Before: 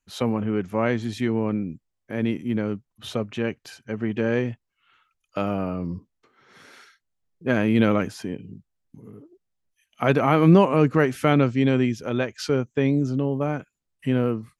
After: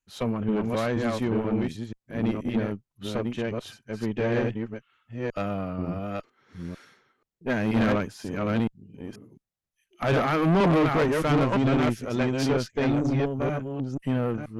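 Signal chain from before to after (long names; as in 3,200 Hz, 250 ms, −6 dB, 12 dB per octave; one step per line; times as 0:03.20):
delay that plays each chunk backwards 482 ms, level −2.5 dB
tube saturation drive 21 dB, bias 0.55
expander for the loud parts 1.5 to 1, over −36 dBFS
level +3.5 dB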